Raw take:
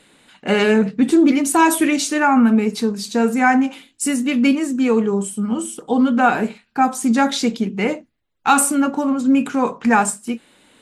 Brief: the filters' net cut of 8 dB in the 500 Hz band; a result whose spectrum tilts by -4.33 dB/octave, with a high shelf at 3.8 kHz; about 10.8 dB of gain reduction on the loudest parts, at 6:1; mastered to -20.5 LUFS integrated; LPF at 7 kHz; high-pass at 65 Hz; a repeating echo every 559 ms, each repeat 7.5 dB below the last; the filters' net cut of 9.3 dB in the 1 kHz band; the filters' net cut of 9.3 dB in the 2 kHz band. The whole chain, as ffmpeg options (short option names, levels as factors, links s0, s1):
-af "highpass=65,lowpass=7000,equalizer=f=500:t=o:g=-8.5,equalizer=f=1000:t=o:g=-7,equalizer=f=2000:t=o:g=-8.5,highshelf=f=3800:g=-3.5,acompressor=threshold=0.0562:ratio=6,aecho=1:1:559|1118|1677|2236|2795:0.422|0.177|0.0744|0.0312|0.0131,volume=2.51"